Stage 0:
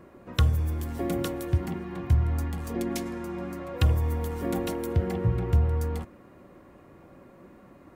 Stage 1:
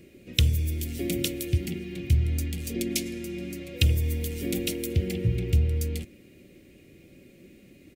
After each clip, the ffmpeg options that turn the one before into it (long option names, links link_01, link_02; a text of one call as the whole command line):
ffmpeg -i in.wav -af "firequalizer=gain_entry='entry(400,0);entry(970,-26);entry(2300,9)':delay=0.05:min_phase=1" out.wav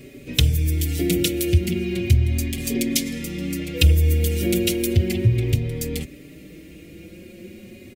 ffmpeg -i in.wav -filter_complex "[0:a]asplit=2[link_01][link_02];[link_02]acompressor=threshold=-32dB:ratio=6,volume=2dB[link_03];[link_01][link_03]amix=inputs=2:normalize=0,asoftclip=type=tanh:threshold=-4dB,asplit=2[link_04][link_05];[link_05]adelay=4.8,afreqshift=0.35[link_06];[link_04][link_06]amix=inputs=2:normalize=1,volume=6.5dB" out.wav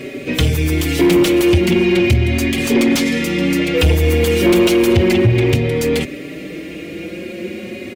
ffmpeg -i in.wav -filter_complex "[0:a]asplit=2[link_01][link_02];[link_02]highpass=frequency=720:poles=1,volume=28dB,asoftclip=type=tanh:threshold=-1dB[link_03];[link_01][link_03]amix=inputs=2:normalize=0,lowpass=frequency=1500:poles=1,volume=-6dB" out.wav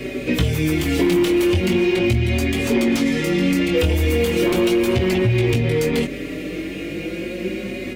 ffmpeg -i in.wav -filter_complex "[0:a]flanger=delay=15.5:depth=7.1:speed=0.39,acrossover=split=1300|3000[link_01][link_02][link_03];[link_01]acompressor=threshold=-19dB:ratio=4[link_04];[link_02]acompressor=threshold=-35dB:ratio=4[link_05];[link_03]acompressor=threshold=-36dB:ratio=4[link_06];[link_04][link_05][link_06]amix=inputs=3:normalize=0,aeval=exprs='val(0)+0.00562*(sin(2*PI*50*n/s)+sin(2*PI*2*50*n/s)/2+sin(2*PI*3*50*n/s)/3+sin(2*PI*4*50*n/s)/4+sin(2*PI*5*50*n/s)/5)':channel_layout=same,volume=3.5dB" out.wav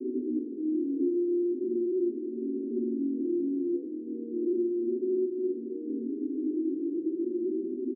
ffmpeg -i in.wav -af "aresample=11025,asoftclip=type=hard:threshold=-24.5dB,aresample=44100,asuperpass=centerf=310:order=8:qfactor=2.1,aecho=1:1:81:0.316" out.wav